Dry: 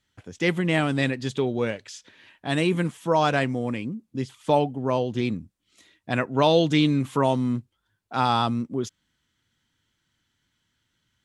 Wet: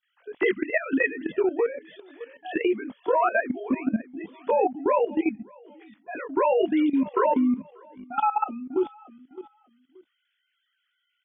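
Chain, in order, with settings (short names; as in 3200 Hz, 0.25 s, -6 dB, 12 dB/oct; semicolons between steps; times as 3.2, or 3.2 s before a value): sine-wave speech; dynamic EQ 220 Hz, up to -3 dB, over -43 dBFS, Q 7.7; compressor 1.5:1, threshold -34 dBFS, peak gain reduction 7.5 dB; doubler 19 ms -2.5 dB; on a send: feedback echo 0.592 s, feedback 27%, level -19 dB; on the sum: level quantiser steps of 14 dB; gain +7.5 dB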